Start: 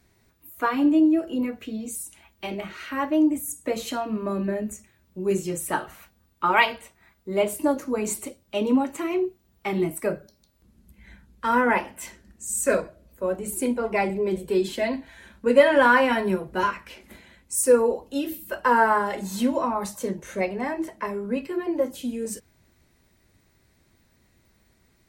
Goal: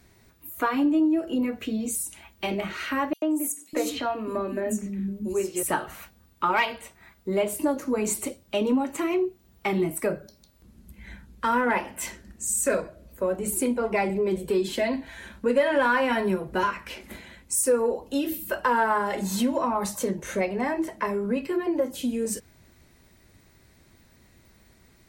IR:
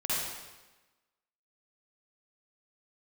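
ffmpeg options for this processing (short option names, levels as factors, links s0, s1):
-filter_complex "[0:a]acompressor=threshold=0.0282:ratio=2,asoftclip=type=tanh:threshold=0.158,asettb=1/sr,asplit=3[s0][s1][s2];[s0]atrim=end=3.134[s3];[s1]atrim=start=3.13:end=5.63,asetpts=PTS-STARTPTS,afade=t=in:d=0.004:c=qsin,afade=t=out:st=2.496:d=0.004:c=qsin,acrossover=split=250|4500[s4][s5][s6];[s5]adelay=90[s7];[s4]adelay=600[s8];[s8][s7][s6]amix=inputs=3:normalize=0,atrim=end_sample=110250[s9];[s2]atrim=start=5.626[s10];[s3][s9]acrossfade=d=0.004:c1=hsin:c2=qsin[s11];[s11][s10]acrossfade=d=0.004:c1=qsin:c2=hsin,volume=1.88"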